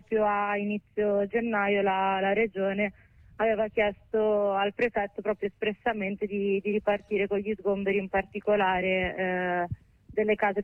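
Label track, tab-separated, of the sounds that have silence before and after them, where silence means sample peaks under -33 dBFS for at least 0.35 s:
3.400000	9.730000	sound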